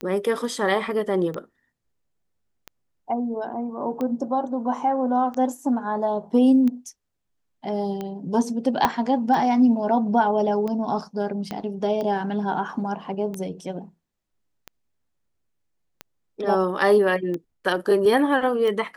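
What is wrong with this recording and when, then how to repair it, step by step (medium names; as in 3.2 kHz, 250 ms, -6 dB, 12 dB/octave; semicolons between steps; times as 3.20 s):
tick 45 rpm -18 dBFS
8.85 s: pop -5 dBFS
11.51 s: pop -16 dBFS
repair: de-click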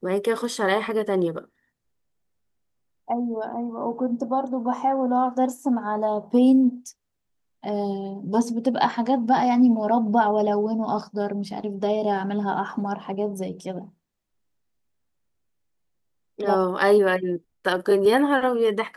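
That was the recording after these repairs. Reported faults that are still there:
8.85 s: pop
11.51 s: pop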